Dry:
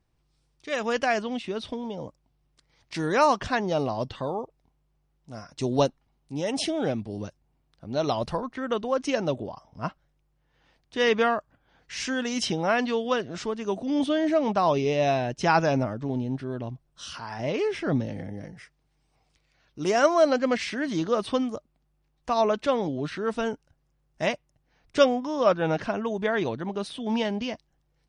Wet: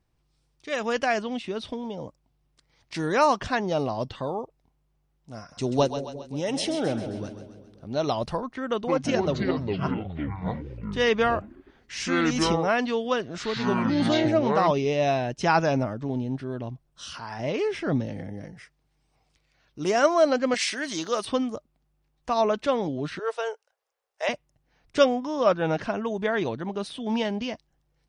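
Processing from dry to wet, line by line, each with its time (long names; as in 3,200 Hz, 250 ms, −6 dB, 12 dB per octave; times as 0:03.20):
0:05.39–0:07.99: echo with a time of its own for lows and highs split 530 Hz, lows 179 ms, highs 133 ms, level −9.5 dB
0:08.70–0:14.71: delay with pitch and tempo change per echo 169 ms, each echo −6 semitones, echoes 3
0:20.54–0:21.25: RIAA equalisation recording
0:23.19–0:24.29: elliptic high-pass filter 440 Hz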